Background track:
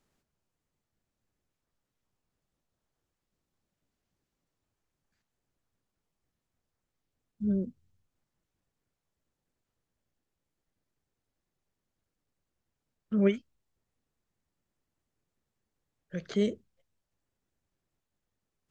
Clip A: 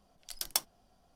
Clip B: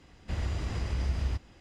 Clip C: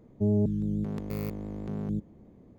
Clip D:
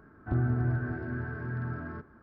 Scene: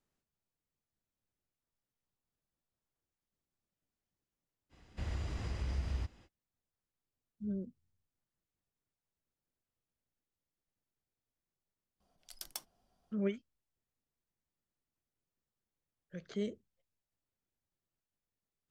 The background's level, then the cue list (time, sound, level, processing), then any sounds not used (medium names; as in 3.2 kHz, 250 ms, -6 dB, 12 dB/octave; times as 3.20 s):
background track -9.5 dB
4.69 s: add B -6.5 dB, fades 0.05 s
12.00 s: add A -9 dB + peak limiter -15.5 dBFS
not used: C, D